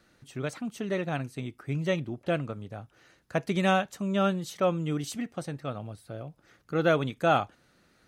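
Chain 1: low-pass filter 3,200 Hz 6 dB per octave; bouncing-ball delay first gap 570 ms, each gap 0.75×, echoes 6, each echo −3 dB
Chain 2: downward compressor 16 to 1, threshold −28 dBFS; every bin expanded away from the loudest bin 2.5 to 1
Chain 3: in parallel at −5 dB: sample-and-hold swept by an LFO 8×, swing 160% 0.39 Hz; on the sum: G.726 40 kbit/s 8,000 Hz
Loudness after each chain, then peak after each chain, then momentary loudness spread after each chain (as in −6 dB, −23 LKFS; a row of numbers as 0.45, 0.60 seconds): −28.5, −29.0, −26.0 LKFS; −10.0, −15.0, −7.0 dBFS; 9, 17, 16 LU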